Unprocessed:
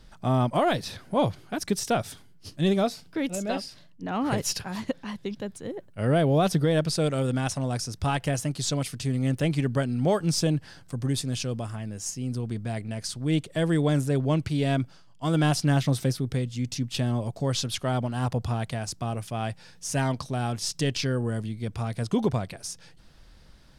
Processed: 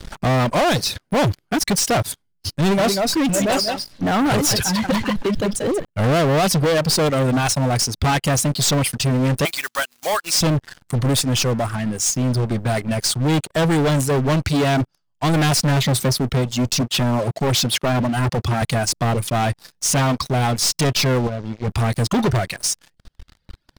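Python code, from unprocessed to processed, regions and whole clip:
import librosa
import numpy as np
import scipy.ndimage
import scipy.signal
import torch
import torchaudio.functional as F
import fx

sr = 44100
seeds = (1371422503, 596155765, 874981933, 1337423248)

y = fx.chain(x, sr, fx.echo_single(ms=185, db=-6.5),
    fx.sustainer(db_per_s=99.0), at=(2.56, 5.85))
y = fx.chain(y, sr, fx.block_float(bits=5),
    fx.highpass(hz=1100.0, slope=12), at=(9.45, 10.41))
y = fx.chain(y, sr, fx.highpass(hz=110.0, slope=12),
    fx.high_shelf(hz=8500.0, db=-5.5),
    fx.clip_hard(threshold_db=-27.5), at=(16.81, 18.62))
y = fx.chain(y, sr, fx.delta_mod(bps=32000, step_db=-49.0),
    fx.tube_stage(drive_db=29.0, bias=0.6), at=(21.27, 21.68))
y = fx.dereverb_blind(y, sr, rt60_s=1.8)
y = fx.leveller(y, sr, passes=5)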